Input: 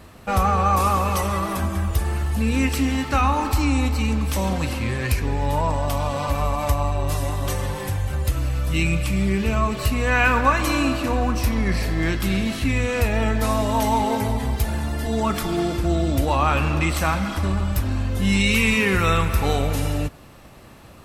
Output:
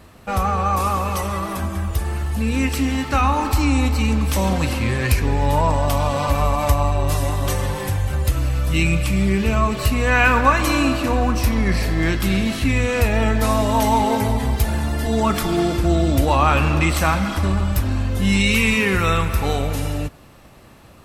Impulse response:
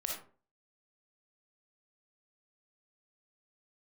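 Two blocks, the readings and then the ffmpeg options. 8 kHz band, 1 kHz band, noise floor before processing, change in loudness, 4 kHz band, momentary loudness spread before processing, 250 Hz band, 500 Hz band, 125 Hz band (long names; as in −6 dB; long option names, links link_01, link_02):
+2.5 dB, +2.0 dB, −44 dBFS, +2.5 dB, +2.5 dB, 6 LU, +2.5 dB, +2.5 dB, +2.5 dB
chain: -af "dynaudnorm=framelen=650:gausssize=11:maxgain=11.5dB,volume=-1dB"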